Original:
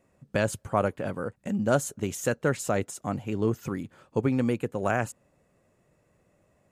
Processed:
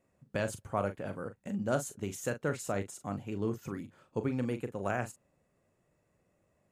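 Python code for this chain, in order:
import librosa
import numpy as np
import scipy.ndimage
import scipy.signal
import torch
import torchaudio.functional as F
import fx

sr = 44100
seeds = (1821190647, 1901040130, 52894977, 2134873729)

y = fx.doubler(x, sr, ms=40.0, db=-10.0)
y = F.gain(torch.from_numpy(y), -7.5).numpy()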